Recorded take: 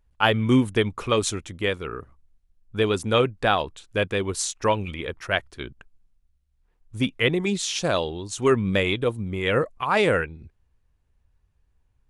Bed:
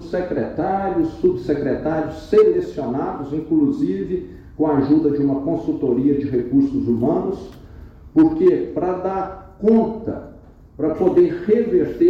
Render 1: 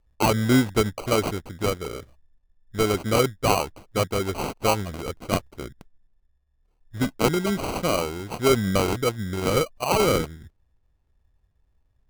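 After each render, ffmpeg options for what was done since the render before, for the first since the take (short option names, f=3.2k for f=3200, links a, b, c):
-af "acrusher=samples=25:mix=1:aa=0.000001"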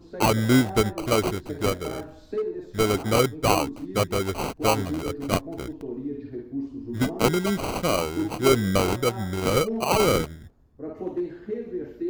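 -filter_complex "[1:a]volume=-15.5dB[a];[0:a][a]amix=inputs=2:normalize=0"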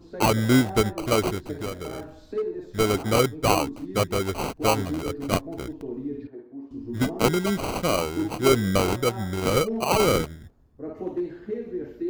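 -filter_complex "[0:a]asettb=1/sr,asplit=3[a][b][c];[a]atrim=end=1.584[d];[b]atrim=start=1.58:end=2.36,asetpts=PTS-STARTPTS,afade=t=in:d=0.004:c=qsin,afade=t=out:st=0.776:d=0.004:c=qsin,acompressor=threshold=-30dB:ratio=2.5:attack=3.2:release=140:knee=1:detection=peak[e];[c]atrim=start=2.356[f];[d][e]acrossfade=d=0.004:c1=hsin:c2=qsin[g];[g][f]acrossfade=d=0.004:c1=qsin:c2=hsin,asettb=1/sr,asplit=3[h][i][j];[h]atrim=end=6.274[k];[i]atrim=start=6.27:end=6.71,asetpts=PTS-STARTPTS,afade=t=in:d=0.004:c=qsin,afade=t=out:st=0.436:d=0.004:c=qsin,bandpass=f=770:t=q:w=1[l];[j]atrim=start=6.706[m];[k][l]acrossfade=d=0.004:c1=hsin:c2=qsin[n];[n][m]acrossfade=d=0.004:c1=qsin:c2=hsin"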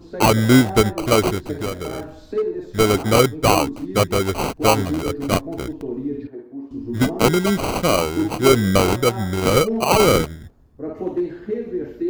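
-af "volume=6dB,alimiter=limit=-3dB:level=0:latency=1"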